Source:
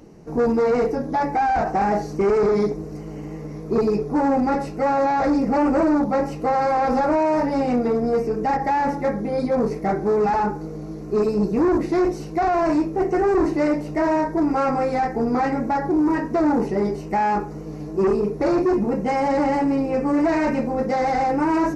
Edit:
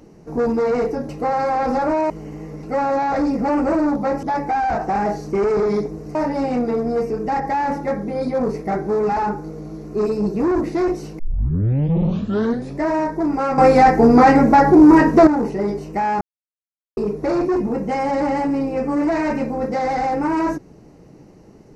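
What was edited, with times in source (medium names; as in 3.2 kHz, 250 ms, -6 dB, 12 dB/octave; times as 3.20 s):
1.09–3.01 s: swap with 6.31–7.32 s
3.54–4.71 s: delete
12.36 s: tape start 1.68 s
14.75–16.44 s: gain +10.5 dB
17.38–18.14 s: mute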